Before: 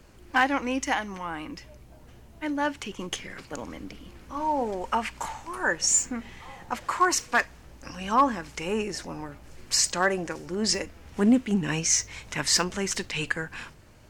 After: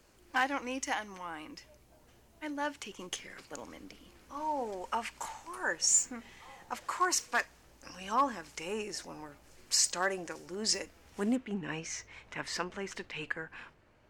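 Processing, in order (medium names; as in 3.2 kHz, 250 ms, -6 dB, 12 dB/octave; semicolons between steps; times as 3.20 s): tone controls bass -7 dB, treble +4 dB, from 11.35 s treble -13 dB; trim -7.5 dB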